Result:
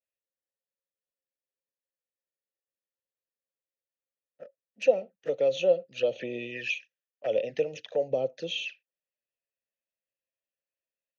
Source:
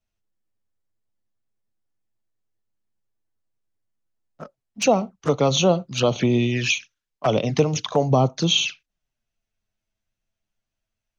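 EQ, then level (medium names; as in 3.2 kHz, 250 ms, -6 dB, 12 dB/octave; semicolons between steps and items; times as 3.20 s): vowel filter e; bass shelf 130 Hz +3.5 dB; treble shelf 4.1 kHz +5.5 dB; 0.0 dB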